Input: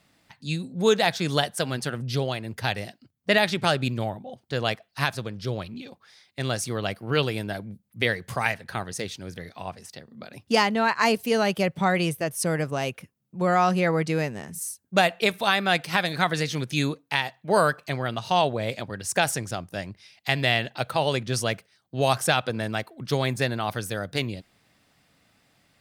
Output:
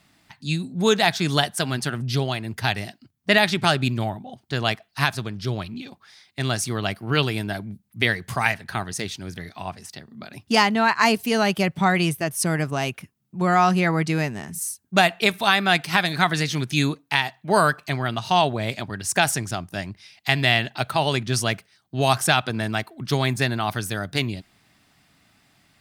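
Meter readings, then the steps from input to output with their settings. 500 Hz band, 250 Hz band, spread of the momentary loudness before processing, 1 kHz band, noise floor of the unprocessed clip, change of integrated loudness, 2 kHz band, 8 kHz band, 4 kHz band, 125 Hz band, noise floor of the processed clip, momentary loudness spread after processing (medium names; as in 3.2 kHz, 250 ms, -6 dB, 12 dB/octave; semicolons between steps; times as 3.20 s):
0.0 dB, +3.5 dB, 14 LU, +3.5 dB, -68 dBFS, +3.0 dB, +4.0 dB, +4.0 dB, +4.0 dB, +4.0 dB, -64 dBFS, 14 LU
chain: peaking EQ 510 Hz -12 dB 0.3 oct; trim +4 dB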